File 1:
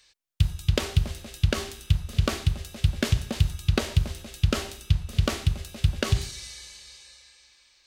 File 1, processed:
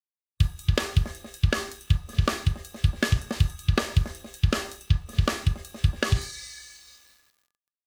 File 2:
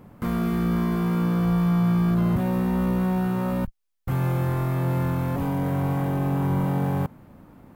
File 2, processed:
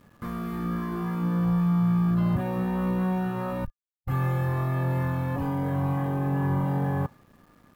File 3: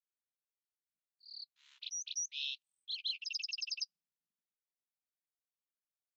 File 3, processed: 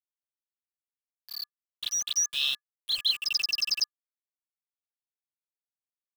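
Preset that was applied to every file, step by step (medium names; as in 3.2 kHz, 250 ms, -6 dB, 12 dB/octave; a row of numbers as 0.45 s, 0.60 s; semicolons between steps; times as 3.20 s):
small samples zeroed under -48 dBFS; small resonant body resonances 1.2/1.7 kHz, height 15 dB, ringing for 90 ms; spectral noise reduction 7 dB; normalise loudness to -27 LUFS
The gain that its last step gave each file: +0.5 dB, -1.5 dB, +12.0 dB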